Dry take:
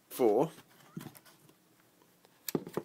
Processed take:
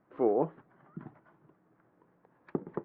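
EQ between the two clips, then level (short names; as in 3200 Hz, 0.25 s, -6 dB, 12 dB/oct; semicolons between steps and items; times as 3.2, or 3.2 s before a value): LPF 1600 Hz 24 dB/oct; 0.0 dB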